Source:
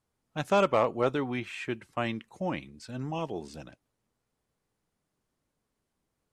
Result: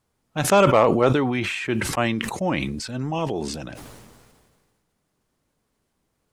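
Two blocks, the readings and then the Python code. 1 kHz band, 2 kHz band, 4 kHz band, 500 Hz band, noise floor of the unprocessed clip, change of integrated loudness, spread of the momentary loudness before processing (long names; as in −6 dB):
+8.5 dB, +10.0 dB, +11.0 dB, +8.5 dB, −82 dBFS, +9.0 dB, 15 LU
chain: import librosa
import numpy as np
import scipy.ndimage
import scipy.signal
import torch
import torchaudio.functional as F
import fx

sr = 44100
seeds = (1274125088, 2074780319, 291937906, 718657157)

y = fx.sustainer(x, sr, db_per_s=32.0)
y = F.gain(torch.from_numpy(y), 7.5).numpy()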